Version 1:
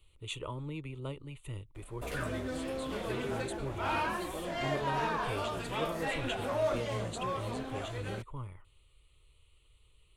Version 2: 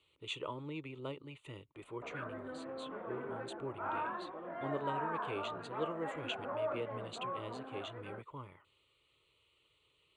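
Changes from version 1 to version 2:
background: add four-pole ladder low-pass 1.7 kHz, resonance 35%; master: add band-pass 210–4900 Hz

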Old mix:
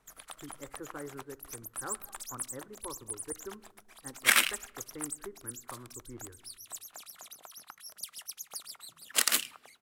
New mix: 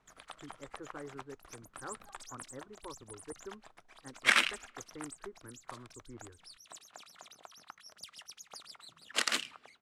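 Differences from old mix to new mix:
speech: send off; master: add distance through air 91 m

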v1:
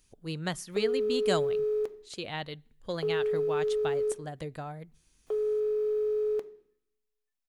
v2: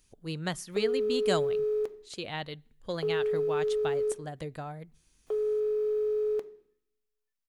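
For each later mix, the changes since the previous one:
no change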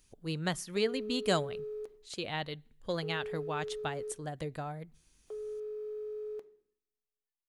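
background -11.5 dB

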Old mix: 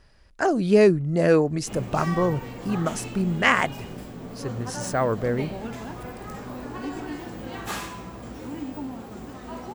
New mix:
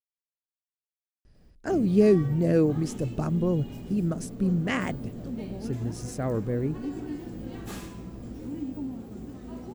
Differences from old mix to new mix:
speech: entry +1.25 s; master: add FFT filter 300 Hz 0 dB, 980 Hz -14 dB, 11 kHz -7 dB

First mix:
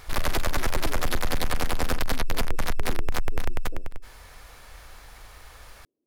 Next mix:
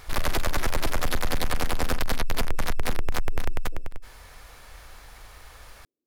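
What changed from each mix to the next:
speech -7.0 dB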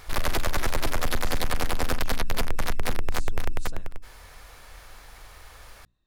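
speech: remove Butterworth band-pass 360 Hz, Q 1.5; master: add hum notches 60/120/180/240/300 Hz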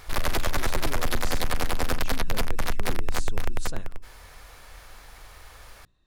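speech +7.0 dB

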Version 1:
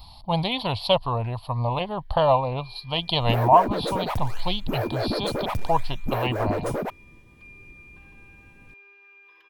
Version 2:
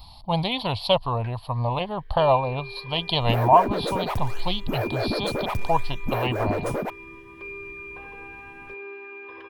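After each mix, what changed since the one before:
first sound: remove pre-emphasis filter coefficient 0.97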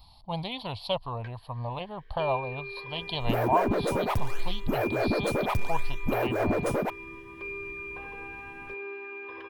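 speech -9.0 dB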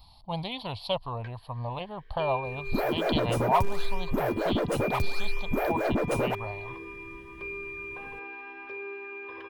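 second sound: entry -0.55 s

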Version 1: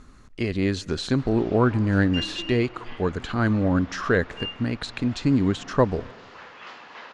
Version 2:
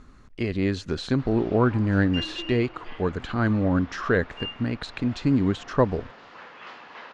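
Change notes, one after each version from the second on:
speech: send -10.0 dB; master: add treble shelf 6.8 kHz -11 dB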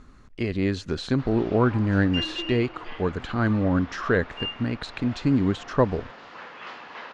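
background +3.0 dB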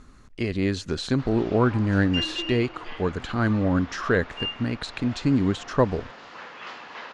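master: add treble shelf 6.8 kHz +11 dB

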